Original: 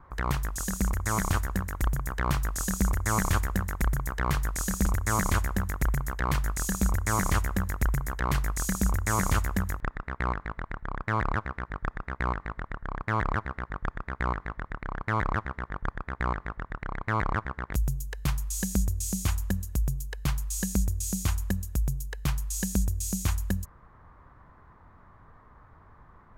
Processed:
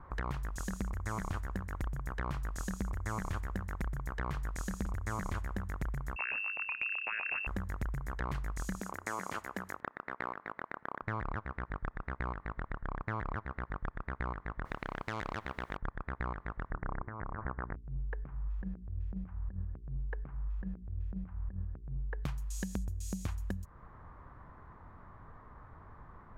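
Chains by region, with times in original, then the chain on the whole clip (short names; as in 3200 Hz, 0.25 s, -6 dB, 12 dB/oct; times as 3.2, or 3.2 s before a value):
6.16–7.47 air absorption 280 m + inverted band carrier 2700 Hz
8.8–11.02 HPF 310 Hz + notch 3700 Hz, Q 27
14.65–15.77 requantised 12-bit, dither none + spectral compressor 2:1
16.71–22.24 LPF 1700 Hz 24 dB/oct + negative-ratio compressor -33 dBFS, ratio -0.5 + notches 60/120/180/240/300/360/420 Hz
whole clip: LPF 2400 Hz 6 dB/oct; compressor 4:1, threshold -37 dBFS; gain +1.5 dB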